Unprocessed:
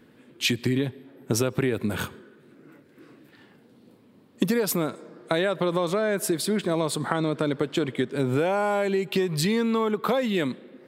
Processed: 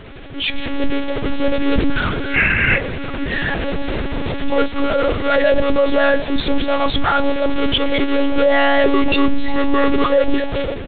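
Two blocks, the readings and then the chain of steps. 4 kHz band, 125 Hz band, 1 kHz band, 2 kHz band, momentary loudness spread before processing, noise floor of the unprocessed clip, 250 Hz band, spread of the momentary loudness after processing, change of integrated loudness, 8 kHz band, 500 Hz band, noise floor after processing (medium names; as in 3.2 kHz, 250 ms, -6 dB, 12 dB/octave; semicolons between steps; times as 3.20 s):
+9.0 dB, +3.5 dB, +10.0 dB, +14.0 dB, 5 LU, -56 dBFS, +7.5 dB, 9 LU, +7.5 dB, under -40 dB, +8.5 dB, -26 dBFS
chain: one-bit comparator; time-frequency box 2.35–2.77 s, 1.4–2.9 kHz +11 dB; hum notches 60/120/180/240 Hz; spectral noise reduction 11 dB; dynamic bell 1.1 kHz, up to -5 dB, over -46 dBFS, Q 1.3; level rider gain up to 16.5 dB; saturation -5 dBFS, distortion -28 dB; frequency-shifting echo 497 ms, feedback 57%, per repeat -84 Hz, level -20 dB; wow and flutter 27 cents; monotone LPC vocoder at 8 kHz 280 Hz; trim +1.5 dB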